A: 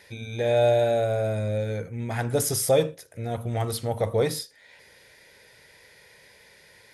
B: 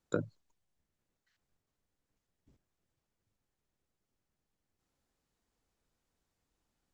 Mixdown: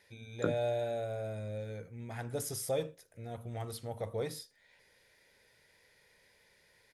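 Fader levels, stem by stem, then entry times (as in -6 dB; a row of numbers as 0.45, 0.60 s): -13.0, +0.5 dB; 0.00, 0.30 s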